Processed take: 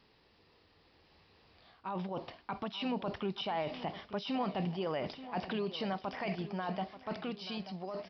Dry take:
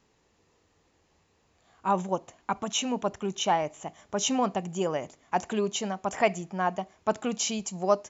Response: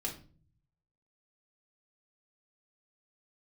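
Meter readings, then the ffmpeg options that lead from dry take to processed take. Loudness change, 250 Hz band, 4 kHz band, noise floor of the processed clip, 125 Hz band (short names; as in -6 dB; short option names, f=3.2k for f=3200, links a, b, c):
-8.5 dB, -6.0 dB, -8.0 dB, -67 dBFS, -3.5 dB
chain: -filter_complex "[0:a]highshelf=f=3.5k:g=11,areverse,acompressor=threshold=-34dB:ratio=12,areverse,alimiter=level_in=11dB:limit=-24dB:level=0:latency=1:release=19,volume=-11dB,dynaudnorm=f=800:g=5:m=8dB,asplit=2[a][b];[b]aecho=0:1:883|1766|2649|3532:0.2|0.0918|0.0422|0.0194[c];[a][c]amix=inputs=2:normalize=0,aresample=11025,aresample=44100"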